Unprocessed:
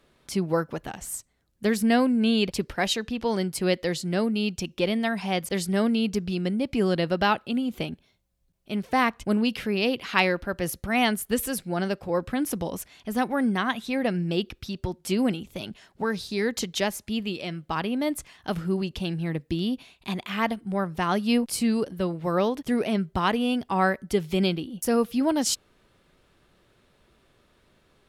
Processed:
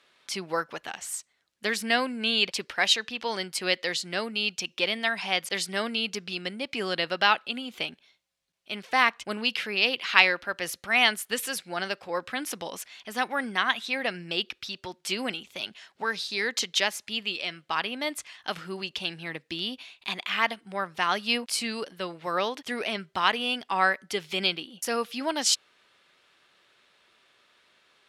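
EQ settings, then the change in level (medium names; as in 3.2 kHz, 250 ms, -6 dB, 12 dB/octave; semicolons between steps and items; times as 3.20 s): band-pass filter 3 kHz, Q 0.62; +6.0 dB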